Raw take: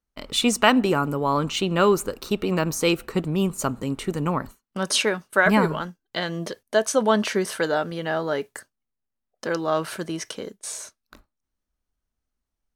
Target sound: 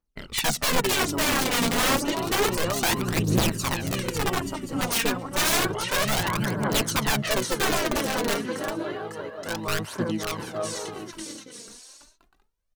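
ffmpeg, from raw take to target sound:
-filter_complex "[0:a]aecho=1:1:550|880|1078|1197|1268:0.631|0.398|0.251|0.158|0.1,aeval=exprs='(mod(5.31*val(0)+1,2)-1)/5.31':c=same,asplit=2[a][b];[b]asetrate=29433,aresample=44100,atempo=1.49831,volume=-2dB[c];[a][c]amix=inputs=2:normalize=0,aphaser=in_gain=1:out_gain=1:delay=4.4:decay=0.55:speed=0.3:type=triangular,volume=-6dB"

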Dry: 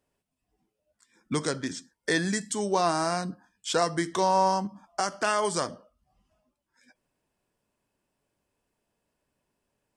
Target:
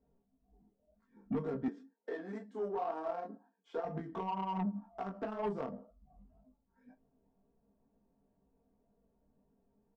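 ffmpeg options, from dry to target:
-filter_complex "[0:a]equalizer=f=770:t=o:w=0.26:g=5.5,alimiter=limit=-21.5dB:level=0:latency=1:release=134,aecho=1:1:15|42:0.596|0.168,acompressor=threshold=-53dB:ratio=1.5,flanger=delay=19:depth=5.9:speed=2,aecho=1:1:4.4:0.68,adynamicsmooth=sensitivity=1.5:basefreq=530,asettb=1/sr,asplit=3[a][b][c];[a]atrim=end=1.684[d];[b]atrim=start=1.68:end=3.85,asetpts=PTS-STARTPTS,afade=t=in:d=0.004:c=qsin,afade=t=out:st=2.166:d=0.004:c=qsin,highpass=f=300:w=0.5412,highpass=f=300:w=1.3066[e];[c]atrim=start=3.846[f];[d][e]acrossfade=d=0.004:c1=hsin:c2=qsin[g];[g][f]acrossfade=d=0.004:c1=qsin:c2=hsin,asoftclip=type=tanh:threshold=-36dB,volume=9dB"

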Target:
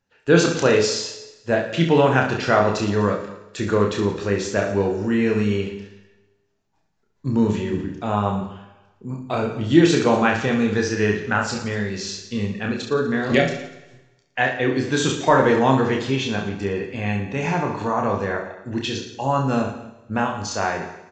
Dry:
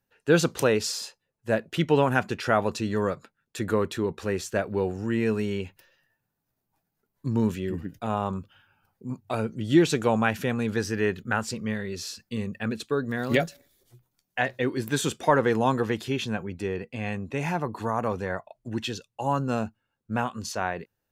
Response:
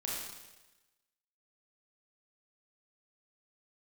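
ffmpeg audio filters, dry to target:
-filter_complex "[0:a]aecho=1:1:30|67.5|114.4|173|246.2:0.631|0.398|0.251|0.158|0.1,asplit=2[a][b];[1:a]atrim=start_sample=2205[c];[b][c]afir=irnorm=-1:irlink=0,volume=-10.5dB[d];[a][d]amix=inputs=2:normalize=0,volume=2dB" -ar 16000 -c:a libvorbis -b:a 64k

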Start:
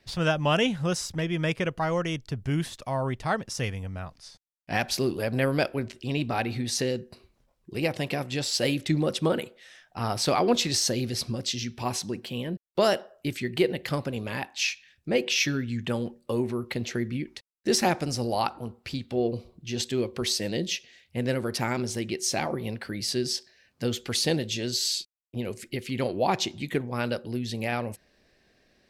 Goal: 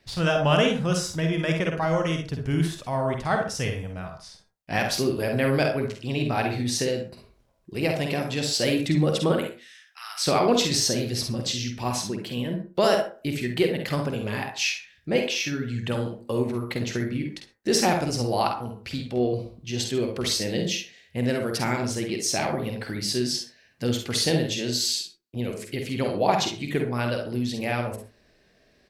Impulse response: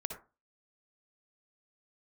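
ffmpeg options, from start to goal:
-filter_complex "[0:a]asettb=1/sr,asplit=3[a][b][c];[a]atrim=end=9.424[d];[b]atrim=start=9.42:end=10.26,asetpts=PTS-STARTPTS,afade=t=in:d=0.004:c=qsin,afade=t=out:st=0.836:d=0.004:c=qsin,highpass=f=1.5k:w=0.5412,highpass=f=1.5k:w=1.3066[e];[c]atrim=start=10.256[f];[d][e]acrossfade=d=0.004:c1=hsin:c2=qsin[g];[g][f]acrossfade=d=0.004:c1=qsin:c2=hsin,asettb=1/sr,asplit=3[h][i][j];[h]atrim=end=15.194[k];[i]atrim=start=15.19:end=15.76,asetpts=PTS-STARTPTS,afade=t=in:d=0.004:c=qsin,afade=t=out:st=0.566:d=0.004:c=qsin,acompressor=threshold=-27dB:ratio=6[l];[j]atrim=start=15.756[m];[k][l]acrossfade=d=0.004:c1=hsin:c2=qsin[n];[n][m]acrossfade=d=0.004:c1=qsin:c2=hsin,aecho=1:1:49|66:0.473|0.299,asplit=2[o][p];[1:a]atrim=start_sample=2205[q];[p][q]afir=irnorm=-1:irlink=0,volume=3dB[r];[o][r]amix=inputs=2:normalize=0,volume=-6dB"

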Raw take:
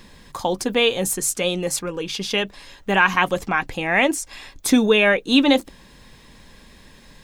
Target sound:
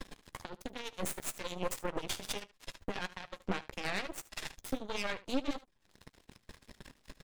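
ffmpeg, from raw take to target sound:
-filter_complex "[0:a]lowshelf=f=160:g=4,acompressor=threshold=-31dB:ratio=8,alimiter=level_in=2.5dB:limit=-24dB:level=0:latency=1:release=434,volume=-2.5dB,acrossover=split=860[a][b];[a]aeval=exprs='val(0)*(1-0.5/2+0.5/2*cos(2*PI*9.7*n/s))':c=same[c];[b]aeval=exprs='val(0)*(1-0.5/2-0.5/2*cos(2*PI*9.7*n/s))':c=same[d];[c][d]amix=inputs=2:normalize=0,aeval=exprs='max(val(0),0)':c=same,flanger=delay=3.2:depth=9.6:regen=31:speed=1.6:shape=triangular,aeval=exprs='0.0335*(cos(1*acos(clip(val(0)/0.0335,-1,1)))-cos(1*PI/2))+0.00531*(cos(7*acos(clip(val(0)/0.0335,-1,1)))-cos(7*PI/2))':c=same,asplit=2[e][f];[f]aecho=0:1:15|75:0.126|0.133[g];[e][g]amix=inputs=2:normalize=0,volume=9.5dB"

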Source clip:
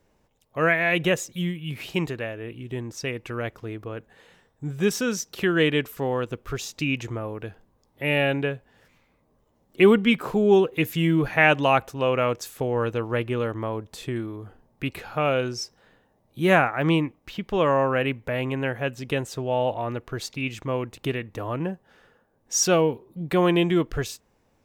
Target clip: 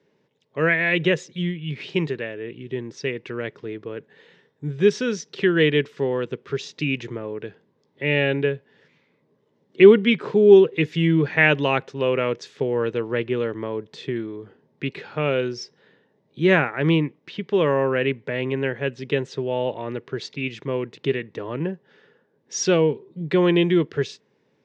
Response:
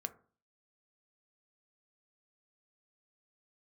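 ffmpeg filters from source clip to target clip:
-af "highpass=f=130:w=0.5412,highpass=f=130:w=1.3066,equalizer=f=150:t=q:w=4:g=5,equalizer=f=410:t=q:w=4:g=8,equalizer=f=730:t=q:w=4:g=-8,equalizer=f=1.2k:t=q:w=4:g=-5,equalizer=f=1.9k:t=q:w=4:g=4,equalizer=f=3.5k:t=q:w=4:g=3,lowpass=f=5.4k:w=0.5412,lowpass=f=5.4k:w=1.3066"

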